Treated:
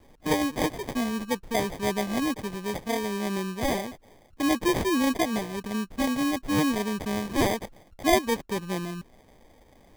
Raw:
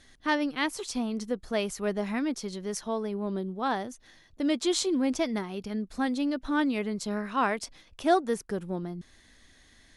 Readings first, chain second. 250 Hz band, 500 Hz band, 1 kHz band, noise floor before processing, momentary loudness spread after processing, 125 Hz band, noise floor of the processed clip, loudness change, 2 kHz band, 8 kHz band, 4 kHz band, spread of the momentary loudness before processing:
+2.5 dB, +2.0 dB, +1.5 dB, −60 dBFS, 8 LU, can't be measured, −57 dBFS, +2.5 dB, +2.5 dB, +2.5 dB, +3.0 dB, 9 LU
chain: decimation without filtering 32×
level +2.5 dB

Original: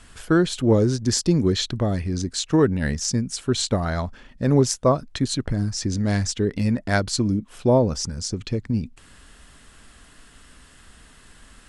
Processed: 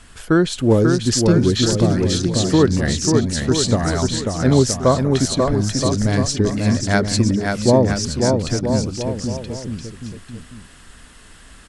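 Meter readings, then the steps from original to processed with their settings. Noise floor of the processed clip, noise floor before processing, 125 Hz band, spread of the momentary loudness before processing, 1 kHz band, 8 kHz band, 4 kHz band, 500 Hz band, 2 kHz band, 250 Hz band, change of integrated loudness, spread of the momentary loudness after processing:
−44 dBFS, −51 dBFS, +5.0 dB, 8 LU, +5.0 dB, +5.0 dB, +5.0 dB, +5.0 dB, +5.0 dB, +5.0 dB, +5.0 dB, 12 LU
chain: bouncing-ball delay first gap 540 ms, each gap 0.8×, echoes 5
level +3 dB

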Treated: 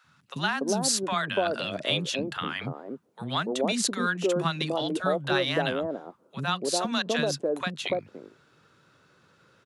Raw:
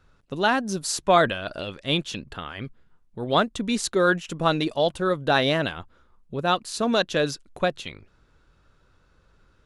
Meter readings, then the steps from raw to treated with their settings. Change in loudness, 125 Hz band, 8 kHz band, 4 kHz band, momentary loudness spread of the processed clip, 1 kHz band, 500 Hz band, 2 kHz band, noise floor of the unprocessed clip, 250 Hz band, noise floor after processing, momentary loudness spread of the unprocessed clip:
−3.5 dB, −3.0 dB, +2.0 dB, −1.0 dB, 9 LU, −5.5 dB, −4.0 dB, −3.0 dB, −62 dBFS, −3.0 dB, −63 dBFS, 15 LU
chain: high-pass filter 130 Hz 24 dB per octave
downward compressor 3 to 1, threshold −28 dBFS, peak gain reduction 12 dB
three-band delay without the direct sound highs, lows, mids 40/290 ms, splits 250/810 Hz
level +5.5 dB

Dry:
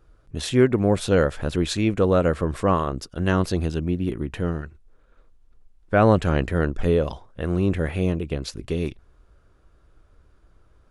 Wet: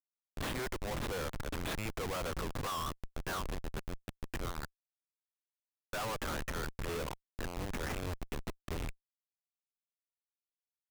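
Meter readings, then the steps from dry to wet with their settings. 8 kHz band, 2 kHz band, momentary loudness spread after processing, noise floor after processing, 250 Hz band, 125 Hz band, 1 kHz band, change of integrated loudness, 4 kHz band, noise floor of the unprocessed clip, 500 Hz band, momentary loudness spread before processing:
−7.5 dB, −10.0 dB, 7 LU, below −85 dBFS, −21.0 dB, −19.0 dB, −12.5 dB, −17.0 dB, −9.0 dB, −58 dBFS, −19.5 dB, 11 LU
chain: running median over 9 samples
Chebyshev band-pass filter 1,000–6,200 Hz, order 2
comparator with hysteresis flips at −36.5 dBFS
level −1 dB

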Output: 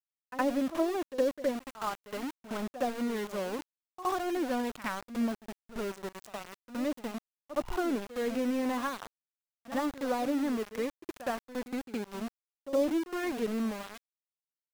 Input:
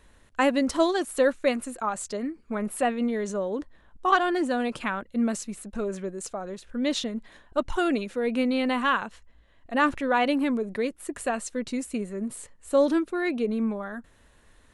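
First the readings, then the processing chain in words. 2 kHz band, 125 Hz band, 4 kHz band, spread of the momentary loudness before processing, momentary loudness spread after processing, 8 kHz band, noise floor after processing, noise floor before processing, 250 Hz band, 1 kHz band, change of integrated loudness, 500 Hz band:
−10.5 dB, can't be measured, −9.0 dB, 12 LU, 12 LU, −9.5 dB, below −85 dBFS, −58 dBFS, −6.0 dB, −8.0 dB, −6.5 dB, −6.5 dB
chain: treble cut that deepens with the level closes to 650 Hz, closed at −19 dBFS
centre clipping without the shift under −30 dBFS
backwards echo 66 ms −13.5 dB
level −5.5 dB

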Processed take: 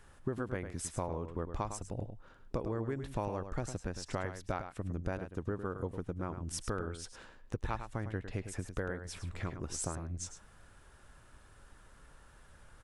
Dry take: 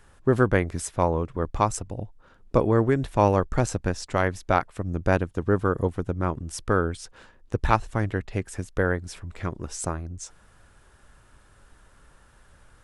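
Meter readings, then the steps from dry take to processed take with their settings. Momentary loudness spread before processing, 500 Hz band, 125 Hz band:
13 LU, −14.5 dB, −12.5 dB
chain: downward compressor 6 to 1, threshold −30 dBFS, peak gain reduction 16 dB
slap from a distant wall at 18 metres, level −9 dB
level −3.5 dB

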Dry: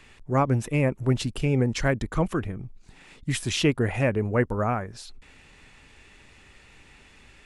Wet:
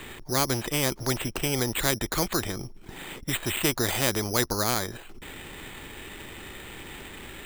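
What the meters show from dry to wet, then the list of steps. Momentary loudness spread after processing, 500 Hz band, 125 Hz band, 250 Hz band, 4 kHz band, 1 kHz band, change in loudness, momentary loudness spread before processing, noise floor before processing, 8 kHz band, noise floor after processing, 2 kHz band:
16 LU, −3.5 dB, −7.0 dB, −4.5 dB, +5.0 dB, −1.0 dB, −1.0 dB, 13 LU, −54 dBFS, +9.5 dB, −46 dBFS, +1.0 dB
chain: parametric band 350 Hz +8.5 dB 0.36 octaves
bad sample-rate conversion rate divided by 8×, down filtered, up hold
every bin compressed towards the loudest bin 2 to 1

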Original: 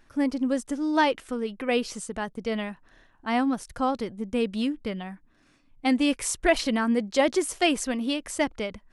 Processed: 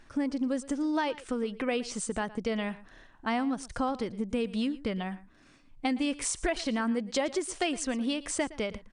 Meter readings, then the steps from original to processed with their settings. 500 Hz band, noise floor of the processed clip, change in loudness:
−5.5 dB, −58 dBFS, −5.0 dB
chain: downward compressor 4 to 1, threshold −31 dBFS, peak gain reduction 13.5 dB
linear-phase brick-wall low-pass 10,000 Hz
single-tap delay 115 ms −18.5 dB
level +3 dB

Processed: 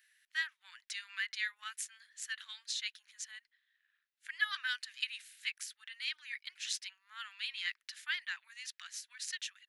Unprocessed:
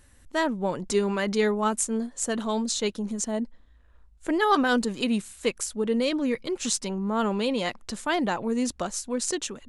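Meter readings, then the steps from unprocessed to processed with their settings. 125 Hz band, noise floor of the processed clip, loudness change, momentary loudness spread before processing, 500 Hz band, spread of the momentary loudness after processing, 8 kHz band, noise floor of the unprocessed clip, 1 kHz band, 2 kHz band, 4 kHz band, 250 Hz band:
below −40 dB, below −85 dBFS, −13.0 dB, 6 LU, below −40 dB, 10 LU, −13.5 dB, −56 dBFS, −24.5 dB, −5.0 dB, −5.0 dB, below −40 dB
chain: elliptic high-pass filter 1,700 Hz, stop band 70 dB
parametric band 8,000 Hz −14 dB 1.1 octaves
level −1.5 dB

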